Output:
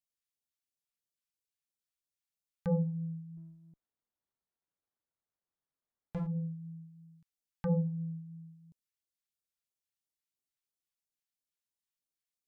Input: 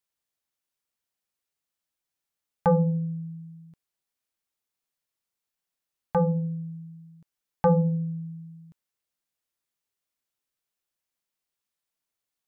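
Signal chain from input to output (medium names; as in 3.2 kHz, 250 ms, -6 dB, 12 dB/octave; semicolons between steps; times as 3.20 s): phase shifter stages 2, 3 Hz, lowest notch 430–1700 Hz; 3.37–6.27 s: sliding maximum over 17 samples; trim -8 dB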